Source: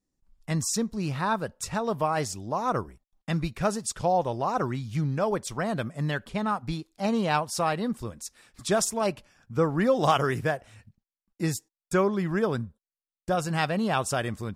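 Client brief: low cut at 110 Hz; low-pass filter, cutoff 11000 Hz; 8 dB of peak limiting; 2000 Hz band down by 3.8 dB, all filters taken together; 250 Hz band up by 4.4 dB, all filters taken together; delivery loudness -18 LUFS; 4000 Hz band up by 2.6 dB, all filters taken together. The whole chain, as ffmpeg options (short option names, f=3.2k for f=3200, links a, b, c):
-af "highpass=110,lowpass=11k,equalizer=f=250:t=o:g=6.5,equalizer=f=2k:t=o:g=-6.5,equalizer=f=4k:t=o:g=5.5,volume=9.5dB,alimiter=limit=-6.5dB:level=0:latency=1"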